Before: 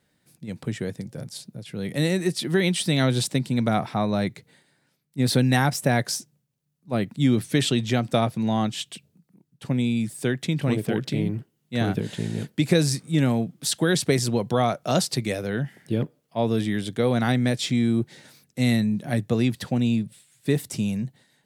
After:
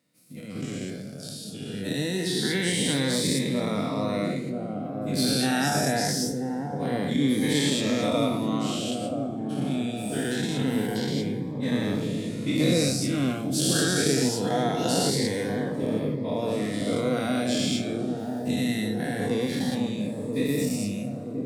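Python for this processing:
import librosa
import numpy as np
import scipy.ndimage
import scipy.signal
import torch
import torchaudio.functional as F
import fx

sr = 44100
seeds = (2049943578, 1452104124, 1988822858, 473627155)

y = fx.spec_dilate(x, sr, span_ms=240)
y = scipy.signal.sosfilt(scipy.signal.butter(2, 150.0, 'highpass', fs=sr, output='sos'), y)
y = fx.transient(y, sr, attack_db=3, sustain_db=-1)
y = fx.brickwall_lowpass(y, sr, high_hz=13000.0, at=(5.32, 6.1))
y = fx.echo_wet_lowpass(y, sr, ms=981, feedback_pct=62, hz=700.0, wet_db=-4.5)
y = fx.rev_double_slope(y, sr, seeds[0], early_s=0.43, late_s=1.8, knee_db=-16, drr_db=6.5)
y = fx.notch_cascade(y, sr, direction='rising', hz=0.24)
y = F.gain(torch.from_numpy(y), -8.5).numpy()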